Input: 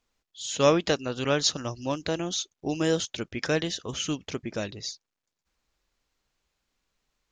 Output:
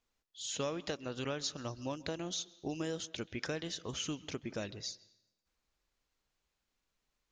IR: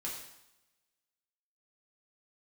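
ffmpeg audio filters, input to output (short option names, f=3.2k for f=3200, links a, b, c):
-filter_complex "[0:a]acompressor=threshold=-28dB:ratio=6,asplit=2[a][b];[1:a]atrim=start_sample=2205,lowpass=5k,adelay=131[c];[b][c]afir=irnorm=-1:irlink=0,volume=-20dB[d];[a][d]amix=inputs=2:normalize=0,volume=-6dB"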